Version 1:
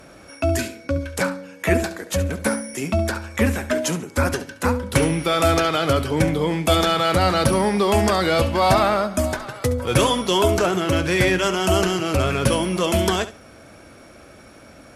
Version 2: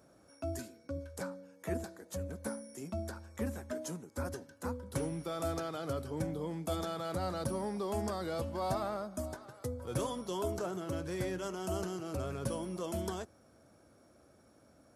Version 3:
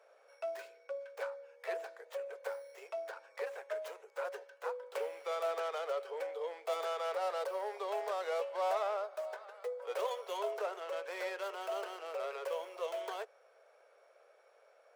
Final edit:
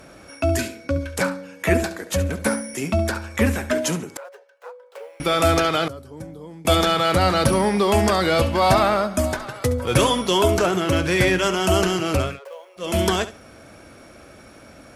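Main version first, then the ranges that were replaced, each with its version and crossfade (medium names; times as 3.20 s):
1
4.17–5.20 s: from 3
5.88–6.65 s: from 2
12.28–12.88 s: from 3, crossfade 0.24 s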